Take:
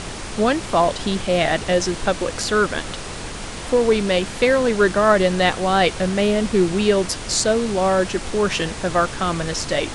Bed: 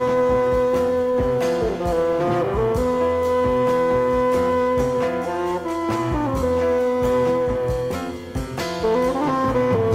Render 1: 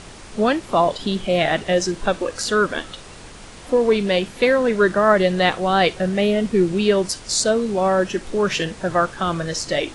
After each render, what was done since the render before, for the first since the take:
noise reduction from a noise print 9 dB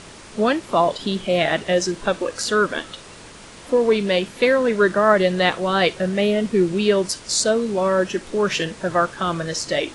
low-shelf EQ 69 Hz −11 dB
notch filter 760 Hz, Q 15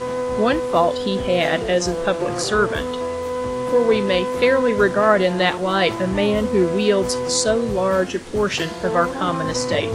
mix in bed −5.5 dB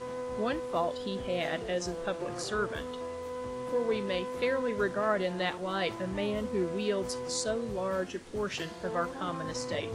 level −13.5 dB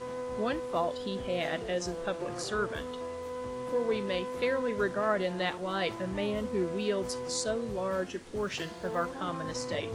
0:08.43–0:09.04: one scale factor per block 7 bits

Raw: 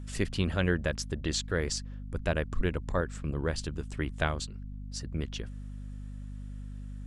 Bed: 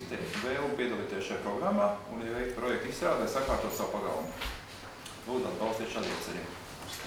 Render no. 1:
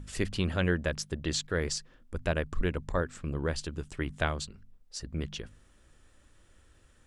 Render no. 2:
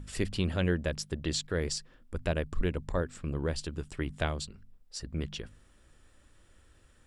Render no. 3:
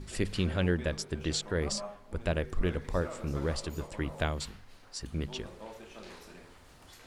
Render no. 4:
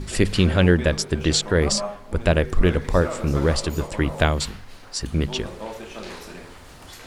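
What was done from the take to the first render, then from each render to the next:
hum removal 50 Hz, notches 5
notch filter 6,300 Hz, Q 13; dynamic equaliser 1,400 Hz, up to −5 dB, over −44 dBFS, Q 0.97
mix in bed −13.5 dB
level +12 dB

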